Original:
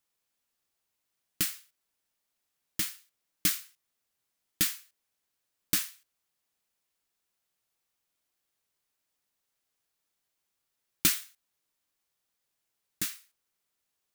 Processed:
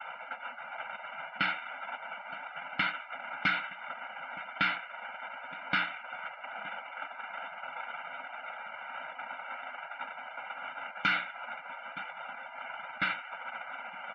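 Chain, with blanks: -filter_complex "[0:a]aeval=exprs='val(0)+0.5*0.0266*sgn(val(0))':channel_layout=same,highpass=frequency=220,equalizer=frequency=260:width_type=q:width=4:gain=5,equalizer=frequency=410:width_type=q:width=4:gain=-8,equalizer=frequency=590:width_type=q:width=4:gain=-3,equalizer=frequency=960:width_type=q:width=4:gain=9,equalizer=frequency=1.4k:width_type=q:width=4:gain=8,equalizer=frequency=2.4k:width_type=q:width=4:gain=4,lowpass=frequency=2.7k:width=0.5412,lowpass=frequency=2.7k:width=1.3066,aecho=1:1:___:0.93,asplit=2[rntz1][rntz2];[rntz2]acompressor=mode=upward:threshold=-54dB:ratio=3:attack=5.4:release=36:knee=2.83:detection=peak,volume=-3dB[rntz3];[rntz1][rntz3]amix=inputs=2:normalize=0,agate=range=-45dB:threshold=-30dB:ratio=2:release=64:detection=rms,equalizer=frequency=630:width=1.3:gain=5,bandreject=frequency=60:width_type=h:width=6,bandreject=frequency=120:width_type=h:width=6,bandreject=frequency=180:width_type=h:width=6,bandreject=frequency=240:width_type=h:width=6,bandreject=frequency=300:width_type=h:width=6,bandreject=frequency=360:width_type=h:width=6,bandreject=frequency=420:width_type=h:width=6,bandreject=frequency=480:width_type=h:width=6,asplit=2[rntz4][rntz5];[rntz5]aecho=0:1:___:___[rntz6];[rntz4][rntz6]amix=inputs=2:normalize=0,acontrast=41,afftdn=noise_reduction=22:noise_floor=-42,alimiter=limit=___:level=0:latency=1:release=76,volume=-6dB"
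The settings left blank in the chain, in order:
1.4, 918, 0.0944, -11dB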